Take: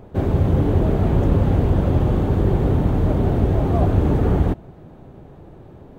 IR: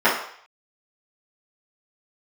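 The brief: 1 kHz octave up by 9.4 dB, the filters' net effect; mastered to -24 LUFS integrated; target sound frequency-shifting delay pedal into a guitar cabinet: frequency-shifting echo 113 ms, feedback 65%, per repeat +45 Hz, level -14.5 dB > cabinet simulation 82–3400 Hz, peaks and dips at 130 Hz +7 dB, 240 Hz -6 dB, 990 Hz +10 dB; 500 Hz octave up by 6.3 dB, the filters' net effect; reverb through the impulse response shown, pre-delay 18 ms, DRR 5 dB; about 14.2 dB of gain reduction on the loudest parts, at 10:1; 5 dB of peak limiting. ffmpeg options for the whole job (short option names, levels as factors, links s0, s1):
-filter_complex "[0:a]equalizer=f=500:t=o:g=7,equalizer=f=1000:t=o:g=4,acompressor=threshold=0.0501:ratio=10,alimiter=limit=0.075:level=0:latency=1,asplit=2[s0][s1];[1:a]atrim=start_sample=2205,adelay=18[s2];[s1][s2]afir=irnorm=-1:irlink=0,volume=0.0422[s3];[s0][s3]amix=inputs=2:normalize=0,asplit=8[s4][s5][s6][s7][s8][s9][s10][s11];[s5]adelay=113,afreqshift=45,volume=0.188[s12];[s6]adelay=226,afreqshift=90,volume=0.123[s13];[s7]adelay=339,afreqshift=135,volume=0.0794[s14];[s8]adelay=452,afreqshift=180,volume=0.0519[s15];[s9]adelay=565,afreqshift=225,volume=0.0335[s16];[s10]adelay=678,afreqshift=270,volume=0.0219[s17];[s11]adelay=791,afreqshift=315,volume=0.0141[s18];[s4][s12][s13][s14][s15][s16][s17][s18]amix=inputs=8:normalize=0,highpass=82,equalizer=f=130:t=q:w=4:g=7,equalizer=f=240:t=q:w=4:g=-6,equalizer=f=990:t=q:w=4:g=10,lowpass=f=3400:w=0.5412,lowpass=f=3400:w=1.3066,volume=2.37"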